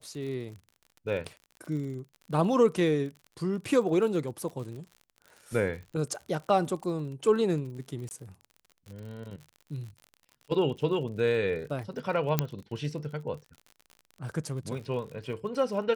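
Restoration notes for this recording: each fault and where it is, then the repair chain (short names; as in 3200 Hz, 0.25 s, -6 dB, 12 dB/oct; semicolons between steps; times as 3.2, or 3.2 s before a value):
crackle 53/s -39 dBFS
8.09–8.11 gap 19 ms
12.39 pop -9 dBFS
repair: de-click; interpolate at 8.09, 19 ms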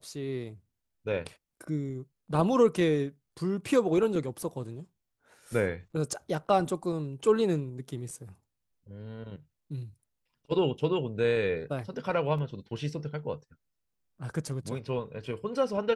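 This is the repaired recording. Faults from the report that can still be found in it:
12.39 pop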